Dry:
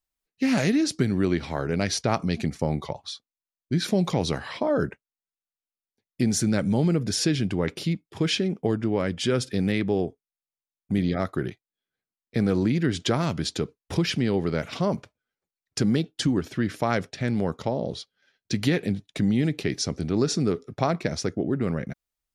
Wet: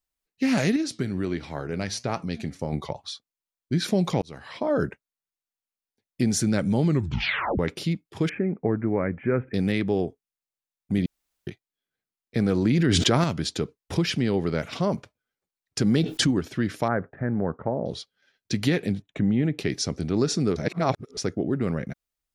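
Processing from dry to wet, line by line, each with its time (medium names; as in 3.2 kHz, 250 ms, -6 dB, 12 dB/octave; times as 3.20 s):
0.76–2.73 s: flange 1.4 Hz, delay 5.6 ms, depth 5.6 ms, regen +82%
4.22–4.73 s: fade in
6.85 s: tape stop 0.74 s
8.29–9.54 s: steep low-pass 2.3 kHz 72 dB/octave
11.06–11.47 s: room tone
12.65–13.24 s: level flattener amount 100%
15.86–16.31 s: level flattener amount 70%
16.88–17.86 s: elliptic low-pass 1.7 kHz, stop band 80 dB
19.02–19.59 s: boxcar filter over 9 samples
20.56–21.17 s: reverse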